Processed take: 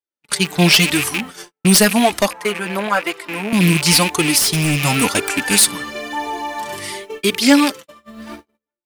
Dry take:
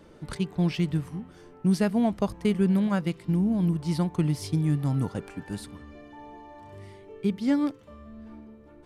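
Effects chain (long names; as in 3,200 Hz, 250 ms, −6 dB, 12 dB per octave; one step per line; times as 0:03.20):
loose part that buzzes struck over −34 dBFS, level −34 dBFS
automatic gain control gain up to 15 dB
in parallel at 0 dB: brickwall limiter −8.5 dBFS, peak gain reduction 7 dB
on the sum: spectral tilt +4.5 dB per octave
wave folding −6 dBFS
flanger 0.95 Hz, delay 2.3 ms, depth 4.2 ms, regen −3%
noise gate −34 dBFS, range −52 dB
0:02.28–0:03.53: three-way crossover with the lows and the highs turned down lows −18 dB, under 380 Hz, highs −14 dB, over 2,100 Hz
0:04.38–0:04.85: hard clipping −19 dBFS, distortion −16 dB
level +5 dB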